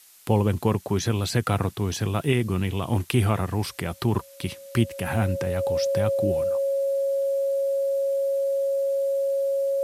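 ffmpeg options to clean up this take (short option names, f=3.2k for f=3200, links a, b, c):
-af "bandreject=f=550:w=30,afftdn=nr=28:nf=-42"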